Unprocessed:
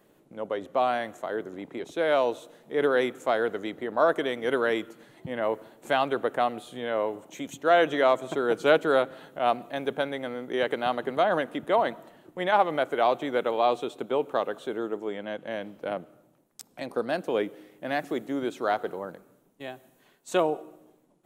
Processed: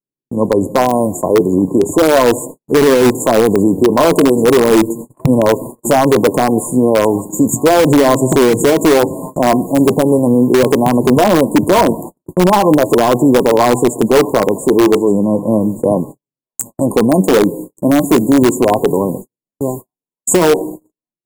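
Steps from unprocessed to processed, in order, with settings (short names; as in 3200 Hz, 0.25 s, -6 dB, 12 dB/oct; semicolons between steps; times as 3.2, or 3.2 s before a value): brick-wall FIR band-stop 1100–6700 Hz; on a send: thin delay 1.174 s, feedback 35%, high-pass 1600 Hz, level -13 dB; on the sum: flange 0.37 Hz, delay 7 ms, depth 4.7 ms, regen +53%; bell 700 Hz -15 dB 1.4 oct; gate -58 dBFS, range -58 dB; in parallel at -6 dB: wrapped overs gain 33 dB; on the sum: maximiser +32 dB; gain -1 dB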